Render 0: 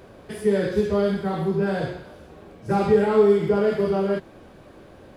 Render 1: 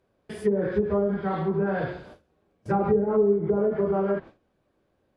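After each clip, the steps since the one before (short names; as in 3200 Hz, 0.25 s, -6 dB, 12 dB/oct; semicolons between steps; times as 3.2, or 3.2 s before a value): treble ducked by the level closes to 430 Hz, closed at -15 dBFS; gate with hold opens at -34 dBFS; dynamic EQ 1300 Hz, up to +5 dB, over -37 dBFS, Q 0.77; gain -3 dB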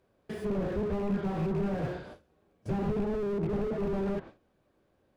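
rattling part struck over -29 dBFS, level -24 dBFS; slew limiter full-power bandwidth 12 Hz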